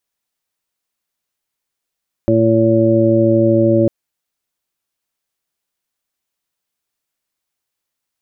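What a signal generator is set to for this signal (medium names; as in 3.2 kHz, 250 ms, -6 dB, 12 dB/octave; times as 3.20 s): steady additive tone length 1.60 s, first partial 113 Hz, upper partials 0/4/-12.5/2.5 dB, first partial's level -17 dB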